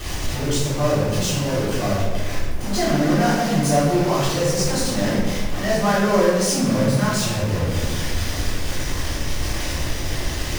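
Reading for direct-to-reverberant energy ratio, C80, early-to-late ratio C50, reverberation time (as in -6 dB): -13.5 dB, 2.0 dB, -1.0 dB, 1.2 s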